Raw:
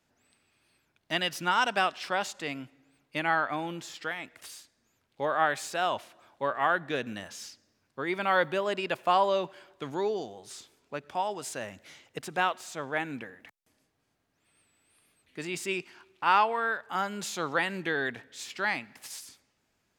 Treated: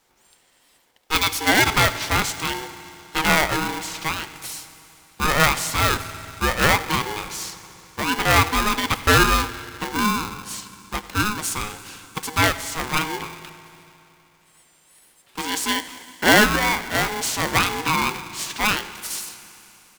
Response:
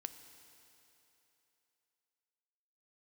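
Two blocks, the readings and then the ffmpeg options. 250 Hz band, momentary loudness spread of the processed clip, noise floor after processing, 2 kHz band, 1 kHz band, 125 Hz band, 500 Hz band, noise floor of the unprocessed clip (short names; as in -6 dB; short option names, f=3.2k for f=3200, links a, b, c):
+11.5 dB, 17 LU, -59 dBFS, +10.0 dB, +6.5 dB, +17.0 dB, +4.0 dB, -76 dBFS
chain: -filter_complex "[0:a]aecho=1:1:90:0.106,asplit=2[a][b];[1:a]atrim=start_sample=2205,highshelf=f=6.4k:g=11[c];[b][c]afir=irnorm=-1:irlink=0,volume=9.5dB[d];[a][d]amix=inputs=2:normalize=0,aeval=exprs='val(0)*sgn(sin(2*PI*630*n/s))':c=same,volume=-1dB"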